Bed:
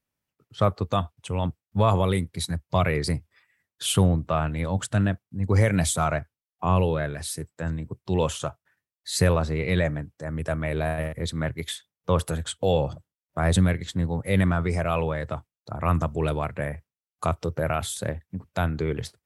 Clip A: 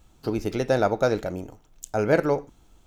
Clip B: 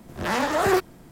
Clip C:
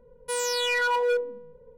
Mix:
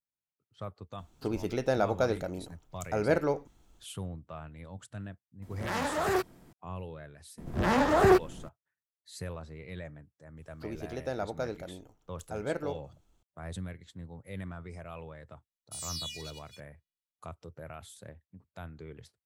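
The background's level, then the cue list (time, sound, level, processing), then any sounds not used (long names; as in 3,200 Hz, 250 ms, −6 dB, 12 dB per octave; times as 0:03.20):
bed −19 dB
0:00.98: mix in A −6 dB
0:05.42: mix in B −8 dB
0:07.38: mix in B −2.5 dB + spectral tilt −2 dB per octave
0:10.37: mix in A −13 dB
0:15.43: mix in C −7 dB + inverse Chebyshev high-pass filter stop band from 1,300 Hz, stop band 50 dB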